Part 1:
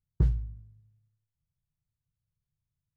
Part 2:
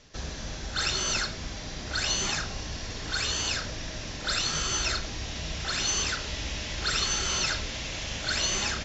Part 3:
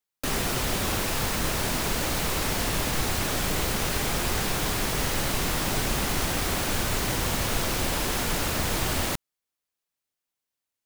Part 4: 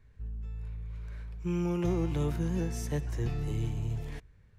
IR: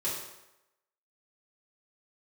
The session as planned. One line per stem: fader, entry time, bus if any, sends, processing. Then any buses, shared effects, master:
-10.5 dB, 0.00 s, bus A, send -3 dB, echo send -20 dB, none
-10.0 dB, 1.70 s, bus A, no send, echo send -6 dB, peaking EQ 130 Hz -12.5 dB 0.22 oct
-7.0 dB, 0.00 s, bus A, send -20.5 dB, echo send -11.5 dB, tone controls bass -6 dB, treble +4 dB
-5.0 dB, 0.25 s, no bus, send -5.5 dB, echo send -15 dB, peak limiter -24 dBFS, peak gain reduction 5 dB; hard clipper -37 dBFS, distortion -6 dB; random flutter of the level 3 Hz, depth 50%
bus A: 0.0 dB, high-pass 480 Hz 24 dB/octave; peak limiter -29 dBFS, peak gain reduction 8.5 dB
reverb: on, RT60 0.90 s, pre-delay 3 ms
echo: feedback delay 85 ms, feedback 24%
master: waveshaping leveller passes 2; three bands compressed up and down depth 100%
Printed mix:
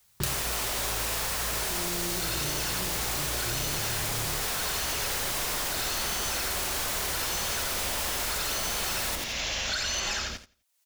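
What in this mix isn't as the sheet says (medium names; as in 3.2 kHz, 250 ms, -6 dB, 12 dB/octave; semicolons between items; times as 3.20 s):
stem 1 -10.5 dB -> -16.5 dB; stem 2: entry 1.70 s -> 1.45 s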